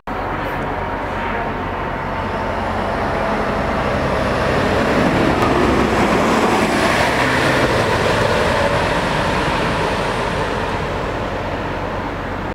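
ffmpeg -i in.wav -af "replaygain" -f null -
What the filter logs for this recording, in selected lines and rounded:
track_gain = -0.5 dB
track_peak = 0.541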